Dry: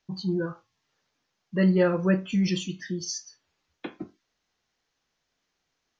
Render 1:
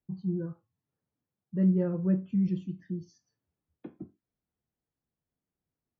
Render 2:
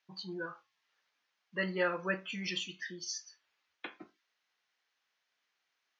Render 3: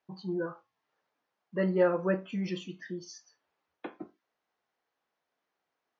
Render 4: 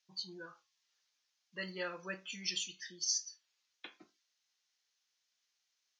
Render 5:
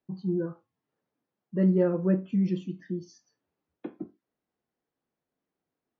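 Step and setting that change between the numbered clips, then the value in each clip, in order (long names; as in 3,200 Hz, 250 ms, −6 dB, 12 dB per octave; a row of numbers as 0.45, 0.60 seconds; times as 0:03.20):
resonant band-pass, frequency: 110, 2,100, 760, 5,900, 280 Hertz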